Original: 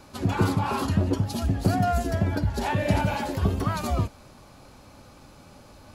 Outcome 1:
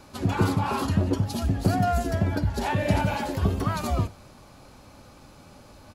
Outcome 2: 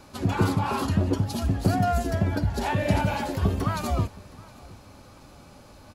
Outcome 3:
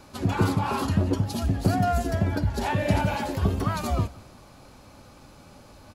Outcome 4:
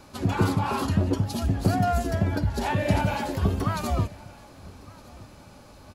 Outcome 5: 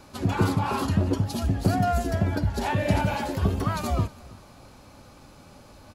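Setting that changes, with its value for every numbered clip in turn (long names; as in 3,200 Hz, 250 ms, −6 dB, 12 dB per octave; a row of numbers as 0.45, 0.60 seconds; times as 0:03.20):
repeating echo, delay time: 95, 717, 174, 1,213, 322 milliseconds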